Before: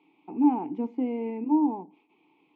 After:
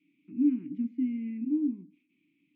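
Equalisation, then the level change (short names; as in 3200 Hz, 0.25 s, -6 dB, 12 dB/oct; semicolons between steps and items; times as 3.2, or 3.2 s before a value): elliptic band-stop 270–1800 Hz, stop band 80 dB; high shelf 2100 Hz -10 dB; 0.0 dB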